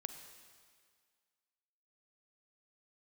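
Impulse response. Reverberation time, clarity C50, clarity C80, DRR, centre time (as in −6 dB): 1.9 s, 8.0 dB, 9.0 dB, 7.5 dB, 27 ms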